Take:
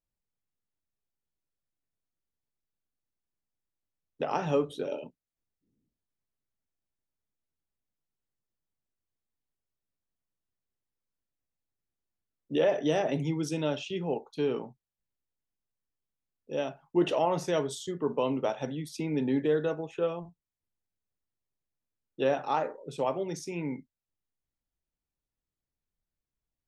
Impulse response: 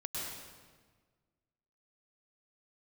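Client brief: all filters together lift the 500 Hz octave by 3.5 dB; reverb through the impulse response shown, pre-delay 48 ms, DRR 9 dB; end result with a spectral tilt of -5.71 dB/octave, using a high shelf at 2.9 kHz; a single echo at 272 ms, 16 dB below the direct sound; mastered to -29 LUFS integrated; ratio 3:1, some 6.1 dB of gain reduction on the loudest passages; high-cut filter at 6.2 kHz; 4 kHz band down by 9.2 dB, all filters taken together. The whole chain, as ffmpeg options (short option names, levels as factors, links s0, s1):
-filter_complex "[0:a]lowpass=6200,equalizer=f=500:t=o:g=4.5,highshelf=f=2900:g=-6.5,equalizer=f=4000:t=o:g=-7.5,acompressor=threshold=0.0501:ratio=3,aecho=1:1:272:0.158,asplit=2[s0][s1];[1:a]atrim=start_sample=2205,adelay=48[s2];[s1][s2]afir=irnorm=-1:irlink=0,volume=0.282[s3];[s0][s3]amix=inputs=2:normalize=0,volume=1.33"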